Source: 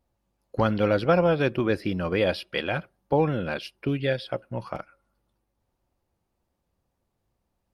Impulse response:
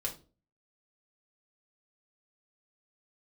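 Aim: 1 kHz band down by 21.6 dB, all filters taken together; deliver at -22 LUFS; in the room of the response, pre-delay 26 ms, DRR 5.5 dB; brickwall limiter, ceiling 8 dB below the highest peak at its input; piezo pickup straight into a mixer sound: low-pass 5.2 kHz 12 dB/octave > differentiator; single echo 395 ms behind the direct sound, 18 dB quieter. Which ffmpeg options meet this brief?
-filter_complex "[0:a]equalizer=f=1000:t=o:g=-7,alimiter=limit=0.112:level=0:latency=1,aecho=1:1:395:0.126,asplit=2[s0][s1];[1:a]atrim=start_sample=2205,adelay=26[s2];[s1][s2]afir=irnorm=-1:irlink=0,volume=0.447[s3];[s0][s3]amix=inputs=2:normalize=0,lowpass=5200,aderivative,volume=17.8"

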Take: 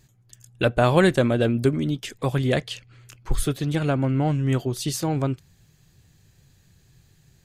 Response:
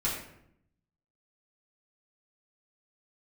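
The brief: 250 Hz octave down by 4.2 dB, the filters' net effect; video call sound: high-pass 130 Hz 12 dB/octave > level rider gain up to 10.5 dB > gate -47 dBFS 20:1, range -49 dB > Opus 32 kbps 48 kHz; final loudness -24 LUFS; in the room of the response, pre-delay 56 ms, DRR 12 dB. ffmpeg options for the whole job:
-filter_complex "[0:a]equalizer=f=250:t=o:g=-5,asplit=2[s0][s1];[1:a]atrim=start_sample=2205,adelay=56[s2];[s1][s2]afir=irnorm=-1:irlink=0,volume=0.112[s3];[s0][s3]amix=inputs=2:normalize=0,highpass=130,dynaudnorm=m=3.35,agate=range=0.00355:threshold=0.00447:ratio=20,volume=1.19" -ar 48000 -c:a libopus -b:a 32k

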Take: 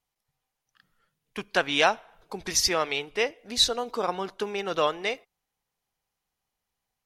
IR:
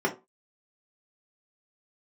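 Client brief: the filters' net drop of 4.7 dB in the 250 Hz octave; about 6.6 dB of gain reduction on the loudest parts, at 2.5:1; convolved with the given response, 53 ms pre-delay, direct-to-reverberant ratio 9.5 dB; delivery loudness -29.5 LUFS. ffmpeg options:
-filter_complex "[0:a]equalizer=f=250:t=o:g=-7,acompressor=threshold=0.0501:ratio=2.5,asplit=2[s0][s1];[1:a]atrim=start_sample=2205,adelay=53[s2];[s1][s2]afir=irnorm=-1:irlink=0,volume=0.0841[s3];[s0][s3]amix=inputs=2:normalize=0,volume=1.12"

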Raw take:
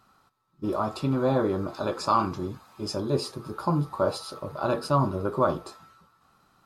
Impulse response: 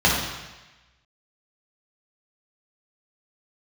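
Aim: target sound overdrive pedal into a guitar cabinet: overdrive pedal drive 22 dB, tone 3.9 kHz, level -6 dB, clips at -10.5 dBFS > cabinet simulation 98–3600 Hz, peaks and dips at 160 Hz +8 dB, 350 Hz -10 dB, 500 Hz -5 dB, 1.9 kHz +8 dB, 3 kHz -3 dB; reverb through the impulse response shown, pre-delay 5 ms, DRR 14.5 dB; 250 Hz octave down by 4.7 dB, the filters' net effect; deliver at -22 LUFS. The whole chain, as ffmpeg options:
-filter_complex "[0:a]equalizer=f=250:t=o:g=-7,asplit=2[s0][s1];[1:a]atrim=start_sample=2205,adelay=5[s2];[s1][s2]afir=irnorm=-1:irlink=0,volume=0.0178[s3];[s0][s3]amix=inputs=2:normalize=0,asplit=2[s4][s5];[s5]highpass=f=720:p=1,volume=12.6,asoftclip=type=tanh:threshold=0.299[s6];[s4][s6]amix=inputs=2:normalize=0,lowpass=f=3900:p=1,volume=0.501,highpass=98,equalizer=f=160:t=q:w=4:g=8,equalizer=f=350:t=q:w=4:g=-10,equalizer=f=500:t=q:w=4:g=-5,equalizer=f=1900:t=q:w=4:g=8,equalizer=f=3000:t=q:w=4:g=-3,lowpass=f=3600:w=0.5412,lowpass=f=3600:w=1.3066,volume=1.12"

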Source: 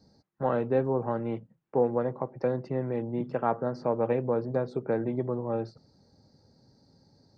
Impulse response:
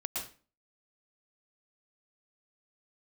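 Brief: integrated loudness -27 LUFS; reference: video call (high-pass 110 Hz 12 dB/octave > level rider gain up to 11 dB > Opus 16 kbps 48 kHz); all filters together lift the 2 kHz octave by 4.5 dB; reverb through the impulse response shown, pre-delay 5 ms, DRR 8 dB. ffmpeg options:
-filter_complex "[0:a]equalizer=f=2000:t=o:g=6,asplit=2[s0][s1];[1:a]atrim=start_sample=2205,adelay=5[s2];[s1][s2]afir=irnorm=-1:irlink=0,volume=0.299[s3];[s0][s3]amix=inputs=2:normalize=0,highpass=110,dynaudnorm=m=3.55,volume=1.33" -ar 48000 -c:a libopus -b:a 16k

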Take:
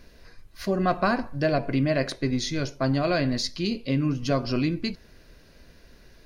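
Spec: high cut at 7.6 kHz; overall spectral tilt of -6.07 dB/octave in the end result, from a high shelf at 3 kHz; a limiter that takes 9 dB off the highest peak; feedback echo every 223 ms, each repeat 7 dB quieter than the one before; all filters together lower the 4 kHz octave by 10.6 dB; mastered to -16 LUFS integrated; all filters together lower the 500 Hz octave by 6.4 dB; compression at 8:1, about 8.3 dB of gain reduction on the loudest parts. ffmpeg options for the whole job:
-af "lowpass=7600,equalizer=f=500:t=o:g=-8.5,highshelf=f=3000:g=-5.5,equalizer=f=4000:t=o:g=-8,acompressor=threshold=0.0316:ratio=8,alimiter=level_in=1.78:limit=0.0631:level=0:latency=1,volume=0.562,aecho=1:1:223|446|669|892|1115:0.447|0.201|0.0905|0.0407|0.0183,volume=13.3"

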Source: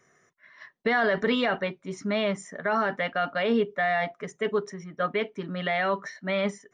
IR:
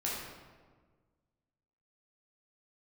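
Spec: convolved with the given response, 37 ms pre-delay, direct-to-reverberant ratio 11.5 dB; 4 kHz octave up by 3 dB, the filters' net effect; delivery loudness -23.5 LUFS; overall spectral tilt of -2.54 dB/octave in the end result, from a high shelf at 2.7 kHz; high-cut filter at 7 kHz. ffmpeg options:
-filter_complex "[0:a]lowpass=7000,highshelf=f=2700:g=-5,equalizer=f=4000:t=o:g=8.5,asplit=2[s0][s1];[1:a]atrim=start_sample=2205,adelay=37[s2];[s1][s2]afir=irnorm=-1:irlink=0,volume=0.158[s3];[s0][s3]amix=inputs=2:normalize=0,volume=1.58"

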